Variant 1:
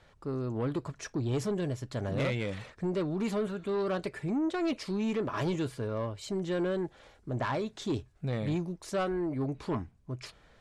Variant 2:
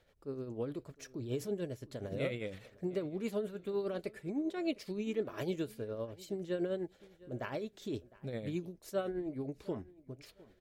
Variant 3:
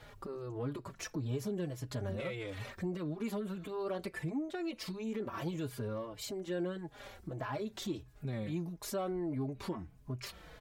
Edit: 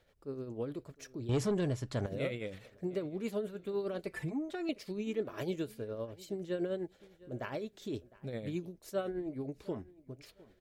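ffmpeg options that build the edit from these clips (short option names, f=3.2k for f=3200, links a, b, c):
-filter_complex "[1:a]asplit=3[a][b][c];[a]atrim=end=1.292[d];[0:a]atrim=start=1.288:end=2.062[e];[b]atrim=start=2.058:end=4.072[f];[2:a]atrim=start=4.068:end=4.692[g];[c]atrim=start=4.688[h];[d][e]acrossfade=d=0.004:c1=hsin:c2=hsin[i];[i][f]acrossfade=d=0.004:c1=hsin:c2=hsin[j];[j][g]acrossfade=d=0.004:c1=hsin:c2=hsin[k];[k][h]acrossfade=d=0.004:c1=hsin:c2=hsin"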